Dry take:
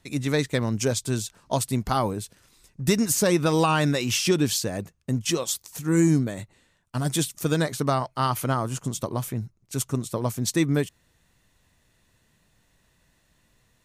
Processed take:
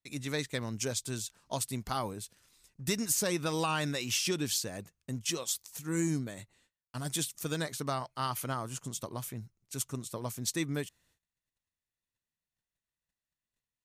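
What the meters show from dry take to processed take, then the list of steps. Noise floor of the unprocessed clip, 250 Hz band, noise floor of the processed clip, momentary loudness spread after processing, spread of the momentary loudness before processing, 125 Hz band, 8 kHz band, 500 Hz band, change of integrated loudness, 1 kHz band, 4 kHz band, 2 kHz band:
-66 dBFS, -11.5 dB, under -85 dBFS, 11 LU, 10 LU, -12.0 dB, -5.0 dB, -11.5 dB, -9.0 dB, -9.5 dB, -6.0 dB, -7.5 dB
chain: gate -60 dBFS, range -22 dB; tilt shelf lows -3.5 dB, about 1.4 kHz; trim -8.5 dB

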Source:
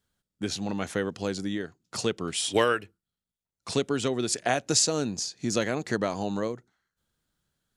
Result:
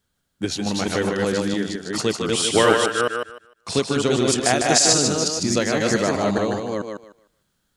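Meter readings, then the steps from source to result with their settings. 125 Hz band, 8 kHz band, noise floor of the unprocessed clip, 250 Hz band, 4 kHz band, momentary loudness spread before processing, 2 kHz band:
+7.5 dB, +8.5 dB, under -85 dBFS, +8.0 dB, +8.5 dB, 10 LU, +8.5 dB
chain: chunks repeated in reverse 220 ms, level -1.5 dB; on a send: thinning echo 152 ms, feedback 22%, high-pass 240 Hz, level -4.5 dB; on the sum: trim +5 dB

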